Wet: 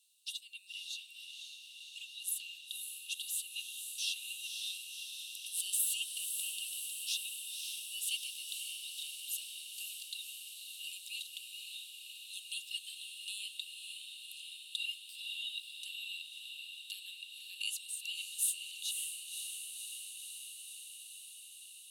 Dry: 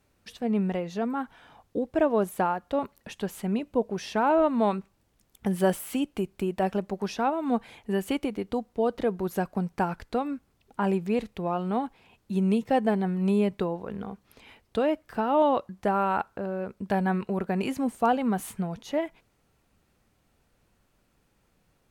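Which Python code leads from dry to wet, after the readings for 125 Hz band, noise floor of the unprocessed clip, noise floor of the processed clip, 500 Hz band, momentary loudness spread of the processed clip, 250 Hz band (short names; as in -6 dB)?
under -40 dB, -69 dBFS, -53 dBFS, under -40 dB, 10 LU, under -40 dB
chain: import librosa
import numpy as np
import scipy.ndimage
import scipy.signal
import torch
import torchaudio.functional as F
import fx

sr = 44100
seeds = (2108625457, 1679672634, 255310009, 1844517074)

y = scipy.signal.sosfilt(scipy.signal.cheby1(6, 9, 2700.0, 'highpass', fs=sr, output='sos'), x)
y = fx.echo_diffused(y, sr, ms=544, feedback_pct=76, wet_db=-5.5)
y = y * 10.0 ** (10.5 / 20.0)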